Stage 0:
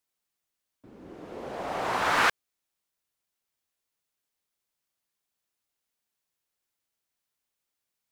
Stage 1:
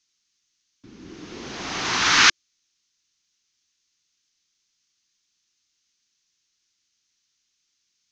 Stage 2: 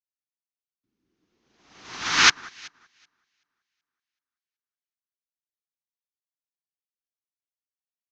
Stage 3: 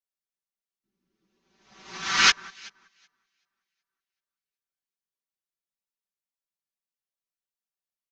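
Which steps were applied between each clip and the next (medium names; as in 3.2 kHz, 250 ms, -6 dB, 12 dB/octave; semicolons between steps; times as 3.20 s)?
FFT filter 340 Hz 0 dB, 570 Hz -15 dB, 1.2 kHz -2 dB, 6.4 kHz +15 dB, 9.9 kHz -27 dB; trim +5.5 dB
echo whose repeats swap between lows and highs 189 ms, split 1.7 kHz, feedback 66%, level -6 dB; upward expansion 2.5:1, over -37 dBFS; trim +1 dB
chorus voices 4, 0.7 Hz, delay 13 ms, depth 3.8 ms; comb 5.2 ms, depth 95%; trim -1.5 dB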